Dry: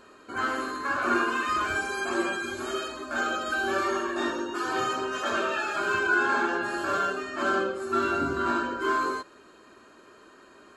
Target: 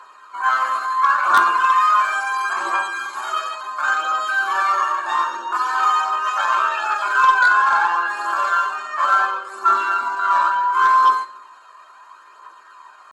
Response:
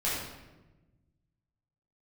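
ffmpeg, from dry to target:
-filter_complex "[0:a]highpass=f=1k:t=q:w=4.9,aphaser=in_gain=1:out_gain=1:delay=1.8:decay=0.37:speed=0.88:type=triangular,aeval=exprs='0.596*(cos(1*acos(clip(val(0)/0.596,-1,1)))-cos(1*PI/2))+0.119*(cos(5*acos(clip(val(0)/0.596,-1,1)))-cos(5*PI/2))+0.0596*(cos(7*acos(clip(val(0)/0.596,-1,1)))-cos(7*PI/2))':c=same,atempo=0.82,asplit=2[a][b];[1:a]atrim=start_sample=2205,asetrate=88200,aresample=44100,adelay=8[c];[b][c]afir=irnorm=-1:irlink=0,volume=-14dB[d];[a][d]amix=inputs=2:normalize=0"

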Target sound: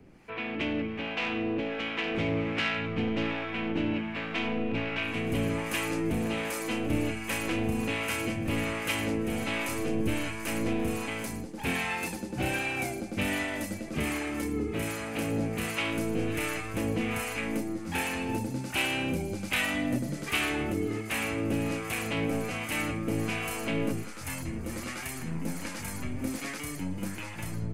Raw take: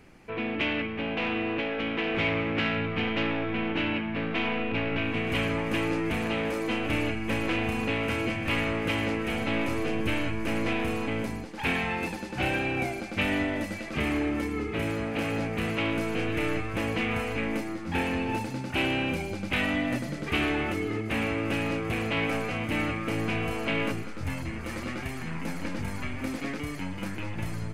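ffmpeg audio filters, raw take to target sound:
-filter_complex "[0:a]acrossover=split=680[a][b];[a]aeval=exprs='val(0)*(1-0.7/2+0.7/2*cos(2*PI*1.3*n/s))':c=same[c];[b]aeval=exprs='val(0)*(1-0.7/2-0.7/2*cos(2*PI*1.3*n/s))':c=same[d];[c][d]amix=inputs=2:normalize=0,acrossover=split=130|6300[e][f][g];[f]lowshelf=f=270:g=4[h];[g]dynaudnorm=f=240:g=5:m=13.5dB[i];[e][h][i]amix=inputs=3:normalize=0"

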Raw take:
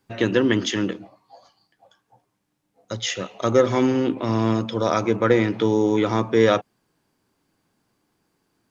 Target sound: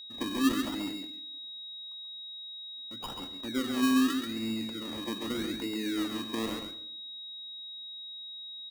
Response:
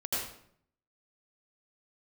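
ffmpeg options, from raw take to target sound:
-filter_complex "[0:a]asplit=3[a][b][c];[a]bandpass=f=270:t=q:w=8,volume=0dB[d];[b]bandpass=f=2.29k:t=q:w=8,volume=-6dB[e];[c]bandpass=f=3.01k:t=q:w=8,volume=-9dB[f];[d][e][f]amix=inputs=3:normalize=0,acrusher=samples=25:mix=1:aa=0.000001:lfo=1:lforange=15:lforate=0.84,aeval=exprs='val(0)+0.01*sin(2*PI*3800*n/s)':c=same,aecho=1:1:135:0.501,asplit=2[g][h];[1:a]atrim=start_sample=2205[i];[h][i]afir=irnorm=-1:irlink=0,volume=-18.5dB[j];[g][j]amix=inputs=2:normalize=0,volume=-3.5dB"

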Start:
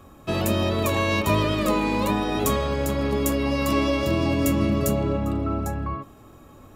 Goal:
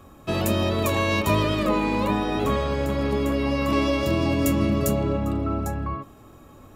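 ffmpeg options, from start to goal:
-filter_complex "[0:a]asettb=1/sr,asplit=3[a][b][c];[a]atrim=end=1.634[d];[b]atrim=start=1.63:end=3.73,asetpts=PTS-STARTPTS,afade=t=in:d=0.004:c=qsin,afade=t=out:st=2.096:d=0.004:c=qsin,acrossover=split=3300[e][f];[f]acompressor=threshold=-42dB:ratio=4:attack=1:release=60[g];[e][g]amix=inputs=2:normalize=0[h];[c]atrim=start=3.726[i];[d][h]acrossfade=d=0.004:c1=hsin:c2=qsin[j];[j][i]acrossfade=d=0.004:c1=qsin:c2=hsin"

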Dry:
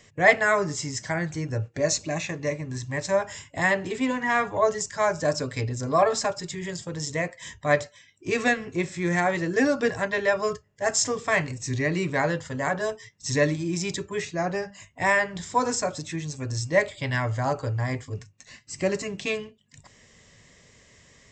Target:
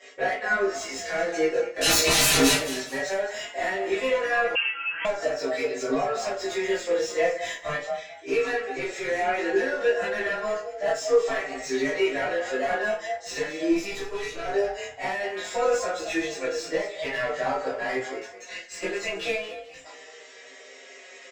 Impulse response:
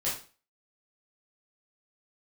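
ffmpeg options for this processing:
-filter_complex "[0:a]highpass=f=380:w=0.5412,highpass=f=380:w=1.3066,equalizer=f=1k:t=o:w=0.39:g=-9.5,acompressor=threshold=-31dB:ratio=16,asplit=2[a][b];[b]highpass=f=720:p=1,volume=18dB,asoftclip=type=tanh:threshold=-21.5dB[c];[a][c]amix=inputs=2:normalize=0,lowpass=f=1.1k:p=1,volume=-6dB,asettb=1/sr,asplit=3[d][e][f];[d]atrim=end=1.814[g];[e]atrim=start=1.81:end=2.53,asetpts=PTS-STARTPTS,afade=t=in:d=0.004:c=qsin,afade=t=out:st=0.716:d=0.004:c=qsin,aeval=exprs='0.0631*sin(PI/2*7.94*val(0)/0.0631)':c=same[h];[f]atrim=start=2.526[i];[g][h]acrossfade=d=0.004:c1=hsin:c2=qsin[j];[j][i]acrossfade=d=0.004:c1=qsin:c2=hsin,asettb=1/sr,asplit=3[k][l][m];[k]atrim=end=13.714[n];[l]atrim=start=13.71:end=14.46,asetpts=PTS-STARTPTS,afade=t=in:d=0.004:c=qsin,afade=t=out:st=0.746:d=0.004:c=qsin,aeval=exprs='(tanh(50.1*val(0)+0.65)-tanh(0.65))/50.1':c=same[o];[m]atrim=start=14.456[p];[n][o]acrossfade=d=0.004:c1=hsin:c2=qsin[q];[q][p]acrossfade=d=0.004:c1=qsin:c2=hsin,asplit=2[r][s];[s]adelay=15,volume=-3.5dB[t];[r][t]amix=inputs=2:normalize=0,asplit=4[u][v][w][x];[v]adelay=214,afreqshift=39,volume=-13dB[y];[w]adelay=428,afreqshift=78,volume=-22.4dB[z];[x]adelay=642,afreqshift=117,volume=-31.7dB[aa];[u][y][z][aa]amix=inputs=4:normalize=0[ab];[1:a]atrim=start_sample=2205,asetrate=57330,aresample=44100[ac];[ab][ac]afir=irnorm=-1:irlink=0,asettb=1/sr,asplit=3[ad][ae][af];[ad]atrim=end=4.554[ag];[ae]atrim=start=4.55:end=5.05,asetpts=PTS-STARTPTS,afade=t=in:d=0.004:c=qsin,afade=t=out:st=0.496:d=0.004:c=qsin,lowpass=f=2.8k:t=q:w=0.5098,lowpass=f=2.8k:t=q:w=0.6013,lowpass=f=2.8k:t=q:w=0.9,lowpass=f=2.8k:t=q:w=2.563,afreqshift=-3300[ah];[af]atrim=start=5.046[ai];[ag][ah]acrossfade=d=0.004:c1=hsin:c2=qsin[aj];[aj][ai]acrossfade=d=0.004:c1=qsin:c2=hsin,asplit=2[ak][al];[al]adelay=4.8,afreqshift=-0.34[am];[ak][am]amix=inputs=2:normalize=1,volume=4.5dB"

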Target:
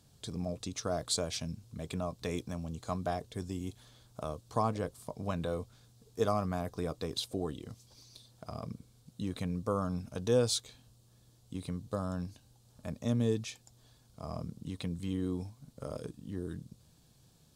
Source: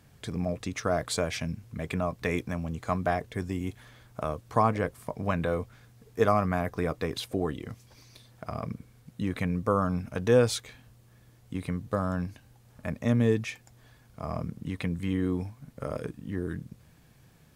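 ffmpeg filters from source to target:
-af "equalizer=f=2k:t=o:w=1:g=-11,equalizer=f=4k:t=o:w=1:g=8,equalizer=f=8k:t=o:w=1:g=6,volume=-6dB"

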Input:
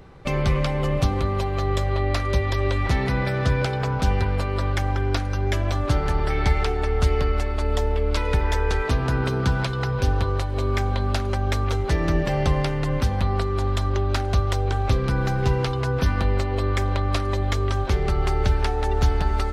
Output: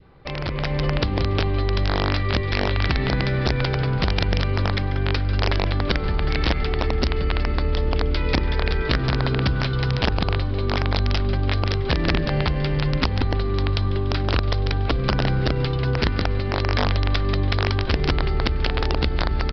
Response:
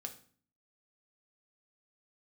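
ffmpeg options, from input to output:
-filter_complex "[0:a]adynamicequalizer=threshold=0.00708:dfrequency=870:dqfactor=1:tfrequency=870:tqfactor=1:attack=5:release=100:ratio=0.375:range=4:mode=cutabove:tftype=bell,acompressor=threshold=-21dB:ratio=8,aeval=exprs='(tanh(3.98*val(0)+0.15)-tanh(0.15))/3.98':c=same,asplit=7[a][b][c][d][e][f][g];[b]adelay=144,afreqshift=-97,volume=-11dB[h];[c]adelay=288,afreqshift=-194,volume=-15.9dB[i];[d]adelay=432,afreqshift=-291,volume=-20.8dB[j];[e]adelay=576,afreqshift=-388,volume=-25.6dB[k];[f]adelay=720,afreqshift=-485,volume=-30.5dB[l];[g]adelay=864,afreqshift=-582,volume=-35.4dB[m];[a][h][i][j][k][l][m]amix=inputs=7:normalize=0,aresample=11025,aeval=exprs='(mod(7.5*val(0)+1,2)-1)/7.5':c=same,aresample=44100,dynaudnorm=f=170:g=7:m=9.5dB,volume=-4.5dB"

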